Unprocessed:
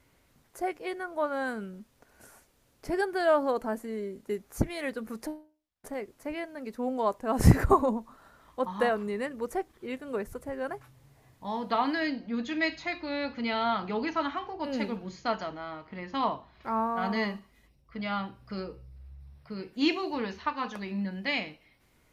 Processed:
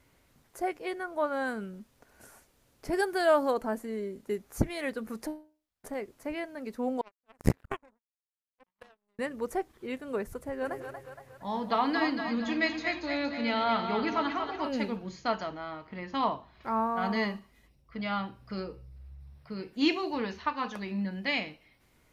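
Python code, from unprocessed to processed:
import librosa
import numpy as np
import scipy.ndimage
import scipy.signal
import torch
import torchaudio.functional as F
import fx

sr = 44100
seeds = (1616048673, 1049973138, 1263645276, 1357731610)

y = fx.high_shelf(x, sr, hz=5200.0, db=8.5, at=(2.93, 3.54))
y = fx.power_curve(y, sr, exponent=3.0, at=(7.01, 9.19))
y = fx.echo_split(y, sr, split_hz=490.0, low_ms=94, high_ms=233, feedback_pct=52, wet_db=-6.5, at=(10.61, 14.68), fade=0.02)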